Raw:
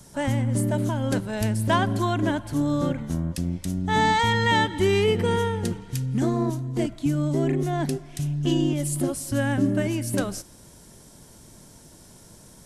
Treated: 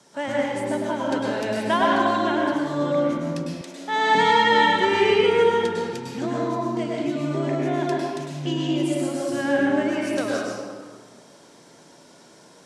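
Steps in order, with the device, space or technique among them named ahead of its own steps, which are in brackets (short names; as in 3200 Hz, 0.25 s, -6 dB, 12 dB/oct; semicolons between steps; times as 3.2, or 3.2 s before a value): supermarket ceiling speaker (BPF 340–5300 Hz; reverb RT60 1.6 s, pre-delay 98 ms, DRR -4 dB); 3.61–4.15 HPF 400 Hz 12 dB/oct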